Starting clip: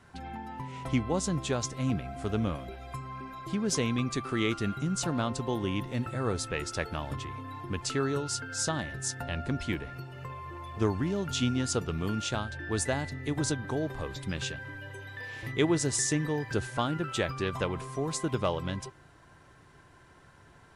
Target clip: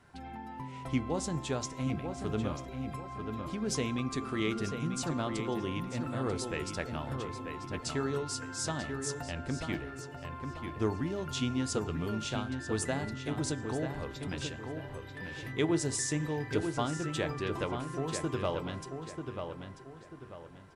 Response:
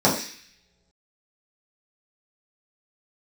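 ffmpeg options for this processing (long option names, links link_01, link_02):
-filter_complex "[0:a]asplit=2[link_01][link_02];[link_02]adelay=940,lowpass=frequency=3200:poles=1,volume=-6dB,asplit=2[link_03][link_04];[link_04]adelay=940,lowpass=frequency=3200:poles=1,volume=0.37,asplit=2[link_05][link_06];[link_06]adelay=940,lowpass=frequency=3200:poles=1,volume=0.37,asplit=2[link_07][link_08];[link_08]adelay=940,lowpass=frequency=3200:poles=1,volume=0.37[link_09];[link_01][link_03][link_05][link_07][link_09]amix=inputs=5:normalize=0,asplit=2[link_10][link_11];[1:a]atrim=start_sample=2205,asetrate=57330,aresample=44100[link_12];[link_11][link_12]afir=irnorm=-1:irlink=0,volume=-31.5dB[link_13];[link_10][link_13]amix=inputs=2:normalize=0,volume=-4.5dB"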